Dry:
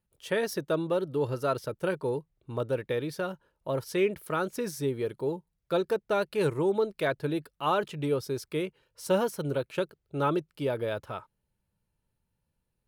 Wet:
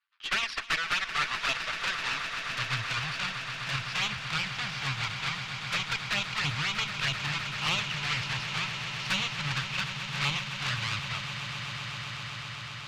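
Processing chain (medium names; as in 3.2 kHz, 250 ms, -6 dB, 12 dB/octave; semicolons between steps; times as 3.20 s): square wave that keeps the level; FFT filter 150 Hz 0 dB, 380 Hz -23 dB, 1.1 kHz +6 dB, 2.5 kHz +15 dB, 4.7 kHz +11 dB, 10 kHz -28 dB; in parallel at -1.5 dB: peak limiter -15 dBFS, peak gain reduction 12 dB; on the sum: touch-sensitive flanger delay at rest 10.4 ms, full sweep at -11.5 dBFS; high-pass sweep 1.2 kHz -> 83 Hz, 1.25–3.04 s; valve stage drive 11 dB, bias 0.75; echo with a slow build-up 128 ms, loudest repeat 8, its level -13.5 dB; trim -7.5 dB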